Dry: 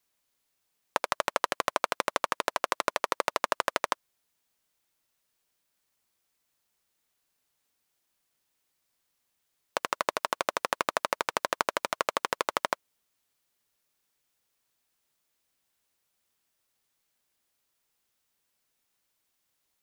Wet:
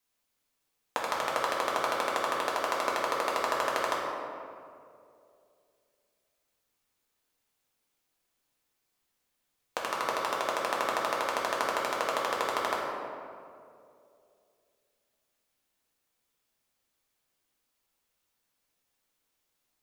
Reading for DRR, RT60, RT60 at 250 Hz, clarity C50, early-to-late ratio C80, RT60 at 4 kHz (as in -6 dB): -4.5 dB, 2.5 s, 2.7 s, 0.0 dB, 1.5 dB, 1.2 s